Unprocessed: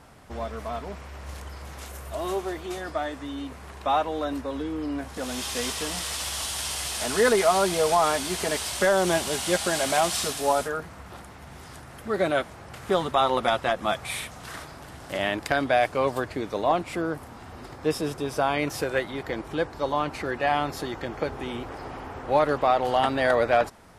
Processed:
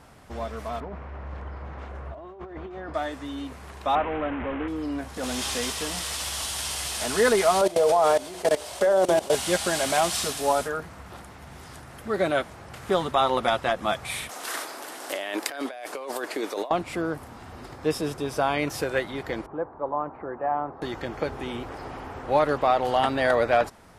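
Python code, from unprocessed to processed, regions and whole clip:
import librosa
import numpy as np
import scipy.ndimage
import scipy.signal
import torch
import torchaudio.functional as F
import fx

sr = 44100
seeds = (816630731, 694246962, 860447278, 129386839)

y = fx.chain(x, sr, fx.lowpass(hz=1600.0, slope=12),
    fx.over_compress(threshold_db=-37.0, ratio=-1.0), at=(0.8, 2.94))
y = fx.chain(y, sr, fx.delta_mod(bps=16000, step_db=-25.0),
    fx.lowpass(hz=2400.0, slope=12), at=(3.95, 4.68))
y = fx.chain(y, sr, fx.cvsd(bps=64000),
    fx.env_flatten(amount_pct=50), at=(5.23, 5.65))
y = fx.chain(y, sr, fx.peak_eq(hz=560.0, db=13.0, octaves=1.3),
    fx.hum_notches(base_hz=60, count=10),
    fx.level_steps(step_db=19), at=(7.61, 9.35))
y = fx.chain(y, sr, fx.highpass(hz=300.0, slope=24),
    fx.high_shelf(hz=7200.0, db=9.0),
    fx.over_compress(threshold_db=-32.0, ratio=-1.0), at=(14.29, 16.71))
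y = fx.chain(y, sr, fx.lowpass(hz=1100.0, slope=24),
    fx.tilt_eq(slope=3.0), at=(19.46, 20.82))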